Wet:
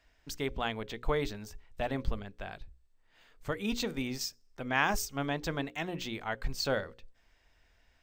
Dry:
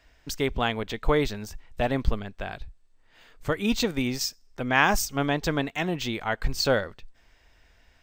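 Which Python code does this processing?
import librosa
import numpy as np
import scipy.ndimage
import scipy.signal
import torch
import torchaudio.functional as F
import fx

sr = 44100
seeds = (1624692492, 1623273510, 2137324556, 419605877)

y = fx.hum_notches(x, sr, base_hz=60, count=9)
y = y * librosa.db_to_amplitude(-7.5)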